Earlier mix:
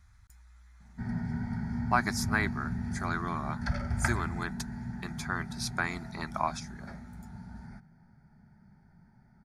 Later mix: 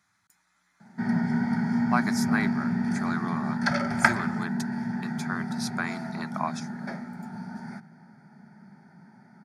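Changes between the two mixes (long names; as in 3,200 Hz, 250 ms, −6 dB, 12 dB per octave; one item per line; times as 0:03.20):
background +11.5 dB
master: add high-pass filter 180 Hz 24 dB per octave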